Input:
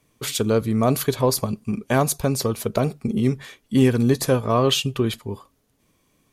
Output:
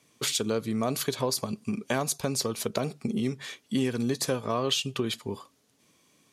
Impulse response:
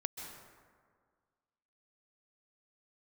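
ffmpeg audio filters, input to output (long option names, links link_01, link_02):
-af "highpass=140,lowpass=5600,aemphasis=mode=production:type=75fm,acompressor=threshold=-28dB:ratio=2.5"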